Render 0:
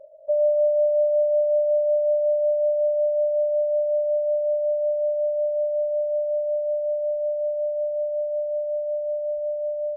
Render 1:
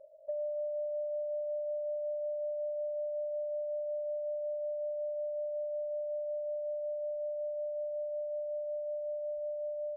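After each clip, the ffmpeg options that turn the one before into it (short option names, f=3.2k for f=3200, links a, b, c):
-af "acompressor=threshold=-26dB:ratio=6,volume=-8.5dB"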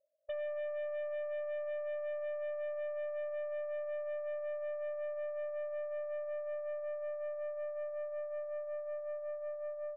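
-af "agate=range=-33dB:threshold=-30dB:ratio=3:detection=peak,aeval=exprs='0.0188*(cos(1*acos(clip(val(0)/0.0188,-1,1)))-cos(1*PI/2))+0.000335*(cos(4*acos(clip(val(0)/0.0188,-1,1)))-cos(4*PI/2))+0.00237*(cos(5*acos(clip(val(0)/0.0188,-1,1)))-cos(5*PI/2))+0.00133*(cos(6*acos(clip(val(0)/0.0188,-1,1)))-cos(6*PI/2))':c=same,volume=3dB"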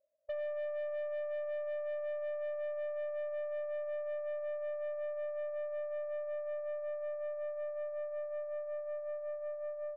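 -af "adynamicsmooth=sensitivity=4:basefreq=2.3k,volume=1dB"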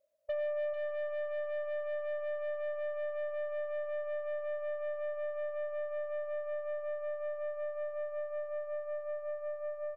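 -af "aecho=1:1:440:0.376,volume=3.5dB"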